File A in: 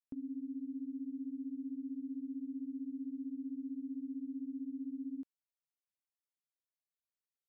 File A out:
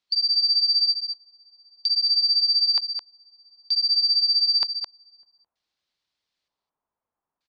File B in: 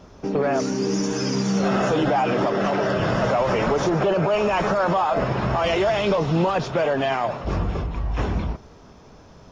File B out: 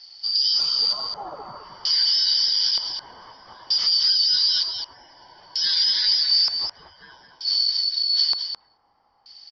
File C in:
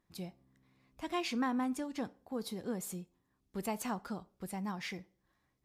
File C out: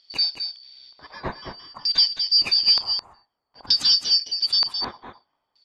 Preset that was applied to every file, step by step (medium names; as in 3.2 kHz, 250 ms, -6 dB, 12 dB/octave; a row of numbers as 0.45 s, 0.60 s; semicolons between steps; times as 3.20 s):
four frequency bands reordered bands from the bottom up 4321; LFO low-pass square 0.54 Hz 990–4300 Hz; on a send: delay 214 ms -7.5 dB; on the sum: normalise loudness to -19 LUFS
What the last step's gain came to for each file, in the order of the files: +13.5 dB, -5.5 dB, +14.0 dB